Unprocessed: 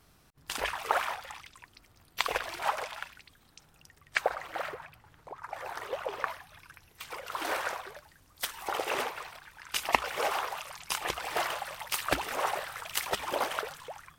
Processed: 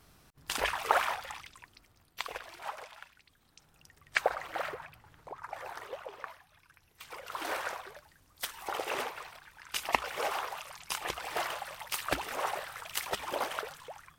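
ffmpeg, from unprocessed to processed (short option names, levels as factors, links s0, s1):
-af "volume=8.41,afade=t=out:st=1.3:d=1.01:silence=0.266073,afade=t=in:st=3.14:d=1.02:silence=0.316228,afade=t=out:st=5.3:d=0.83:silence=0.316228,afade=t=in:st=6.68:d=0.62:silence=0.446684"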